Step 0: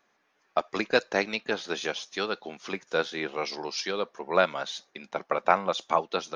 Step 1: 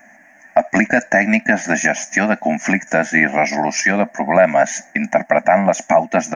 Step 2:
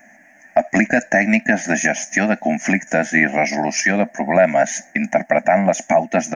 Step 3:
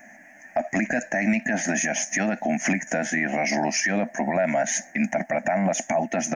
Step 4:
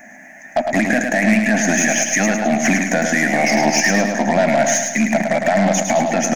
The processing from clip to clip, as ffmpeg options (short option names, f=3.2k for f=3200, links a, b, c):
-filter_complex "[0:a]asplit=2[a][b];[b]acompressor=threshold=-34dB:ratio=6,volume=1.5dB[c];[a][c]amix=inputs=2:normalize=0,firequalizer=gain_entry='entry(120,0);entry(240,12);entry(430,-19);entry(640,11);entry(1200,-13);entry(1800,13);entry(3700,-29);entry(6600,7);entry(9900,2)':delay=0.05:min_phase=1,alimiter=level_in=13.5dB:limit=-1dB:release=50:level=0:latency=1,volume=-1.5dB"
-af "equalizer=f=1.1k:w=2:g=-8"
-af "alimiter=limit=-14.5dB:level=0:latency=1:release=57"
-filter_complex "[0:a]aeval=exprs='0.2*(cos(1*acos(clip(val(0)/0.2,-1,1)))-cos(1*PI/2))+0.0316*(cos(3*acos(clip(val(0)/0.2,-1,1)))-cos(3*PI/2))+0.0316*(cos(5*acos(clip(val(0)/0.2,-1,1)))-cos(5*PI/2))+0.0126*(cos(7*acos(clip(val(0)/0.2,-1,1)))-cos(7*PI/2))+0.00355*(cos(8*acos(clip(val(0)/0.2,-1,1)))-cos(8*PI/2))':c=same,asplit=2[a][b];[b]aecho=0:1:106|212|318|424|530|636:0.562|0.276|0.135|0.0662|0.0324|0.0159[c];[a][c]amix=inputs=2:normalize=0,volume=8dB"